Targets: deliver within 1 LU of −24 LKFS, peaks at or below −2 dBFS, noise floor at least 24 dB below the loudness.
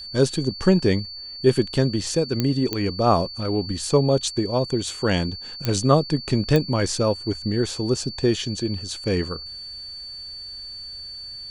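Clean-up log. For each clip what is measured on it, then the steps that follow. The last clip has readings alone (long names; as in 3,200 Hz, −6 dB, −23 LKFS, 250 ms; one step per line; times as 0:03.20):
number of clicks 4; interfering tone 4,500 Hz; level of the tone −34 dBFS; integrated loudness −22.5 LKFS; sample peak −4.0 dBFS; target loudness −24.0 LKFS
→ click removal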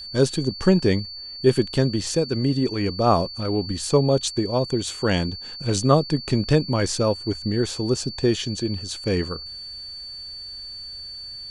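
number of clicks 0; interfering tone 4,500 Hz; level of the tone −34 dBFS
→ notch filter 4,500 Hz, Q 30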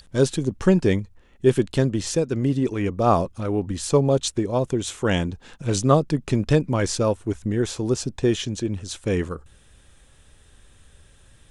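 interfering tone none found; integrated loudness −23.0 LKFS; sample peak −4.0 dBFS; target loudness −24.0 LKFS
→ level −1 dB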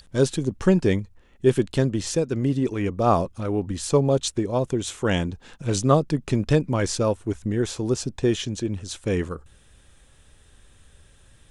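integrated loudness −24.0 LKFS; sample peak −5.0 dBFS; background noise floor −55 dBFS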